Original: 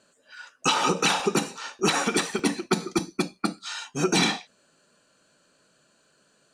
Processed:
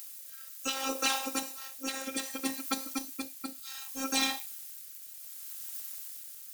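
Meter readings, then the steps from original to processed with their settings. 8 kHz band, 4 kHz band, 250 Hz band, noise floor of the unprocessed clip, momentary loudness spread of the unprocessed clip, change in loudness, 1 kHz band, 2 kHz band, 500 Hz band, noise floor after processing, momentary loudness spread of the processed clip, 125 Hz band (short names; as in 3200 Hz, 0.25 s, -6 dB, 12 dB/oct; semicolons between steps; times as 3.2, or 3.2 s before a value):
-5.0 dB, -7.0 dB, -11.0 dB, -65 dBFS, 12 LU, -9.5 dB, -10.5 dB, -9.0 dB, -14.5 dB, -48 dBFS, 14 LU, under -25 dB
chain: added noise blue -40 dBFS; tone controls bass -8 dB, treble 0 dB; rotary speaker horn 0.65 Hz; high shelf 7700 Hz +10 dB; robotiser 267 Hz; gain -5.5 dB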